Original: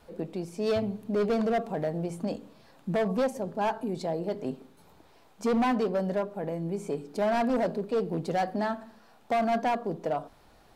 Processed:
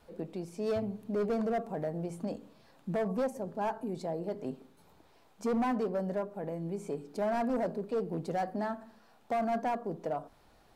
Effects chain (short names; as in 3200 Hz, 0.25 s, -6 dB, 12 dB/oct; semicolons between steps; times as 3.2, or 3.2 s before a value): dynamic EQ 3500 Hz, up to -7 dB, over -50 dBFS, Q 0.95; gain -4.5 dB